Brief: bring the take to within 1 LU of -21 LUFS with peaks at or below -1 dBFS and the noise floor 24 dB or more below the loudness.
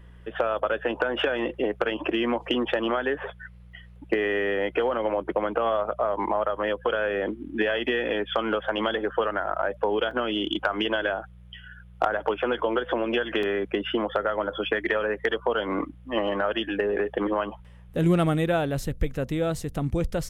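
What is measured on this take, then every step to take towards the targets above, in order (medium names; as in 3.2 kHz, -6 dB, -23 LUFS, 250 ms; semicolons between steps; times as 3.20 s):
dropouts 2; longest dropout 2.8 ms; hum 60 Hz; highest harmonic 180 Hz; hum level -46 dBFS; loudness -26.5 LUFS; peak level -11.0 dBFS; loudness target -21.0 LUFS
-> interpolate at 10.11/13.43 s, 2.8 ms; de-hum 60 Hz, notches 3; trim +5.5 dB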